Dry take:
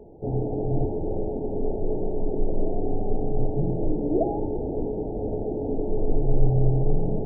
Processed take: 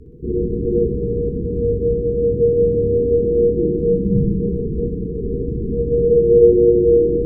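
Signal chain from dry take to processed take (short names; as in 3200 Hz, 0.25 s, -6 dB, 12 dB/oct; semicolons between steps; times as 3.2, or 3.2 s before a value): thinning echo 62 ms, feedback 74%, high-pass 200 Hz, level -4 dB; frequency shift -490 Hz; gain +5 dB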